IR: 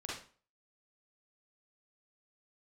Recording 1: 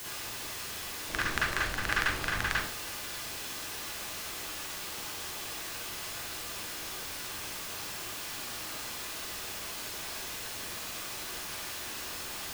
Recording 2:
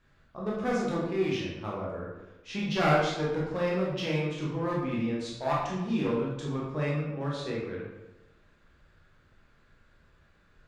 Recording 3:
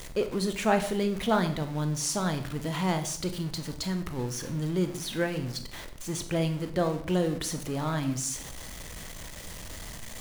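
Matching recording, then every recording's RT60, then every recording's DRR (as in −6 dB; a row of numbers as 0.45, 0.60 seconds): 1; 0.40, 1.0, 0.60 seconds; −6.0, −5.5, 7.5 decibels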